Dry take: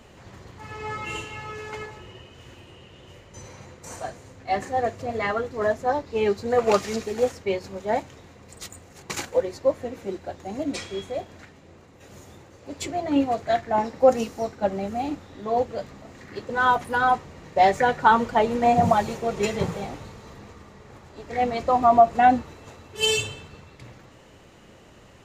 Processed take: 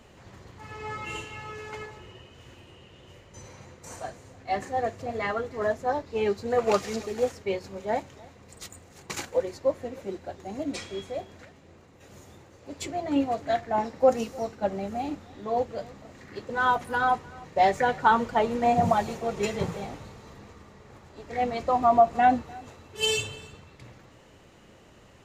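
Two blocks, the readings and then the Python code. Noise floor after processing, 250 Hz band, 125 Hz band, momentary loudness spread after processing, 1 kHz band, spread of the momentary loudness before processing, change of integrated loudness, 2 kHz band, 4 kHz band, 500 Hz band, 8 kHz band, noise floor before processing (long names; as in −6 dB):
−54 dBFS, −3.5 dB, −3.5 dB, 21 LU, −3.5 dB, 20 LU, −3.5 dB, −3.5 dB, −3.5 dB, −3.5 dB, −3.5 dB, −51 dBFS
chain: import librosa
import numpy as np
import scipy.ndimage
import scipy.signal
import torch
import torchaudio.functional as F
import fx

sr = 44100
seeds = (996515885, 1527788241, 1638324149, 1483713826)

y = x + 10.0 ** (-23.0 / 20.0) * np.pad(x, (int(302 * sr / 1000.0), 0))[:len(x)]
y = y * librosa.db_to_amplitude(-3.5)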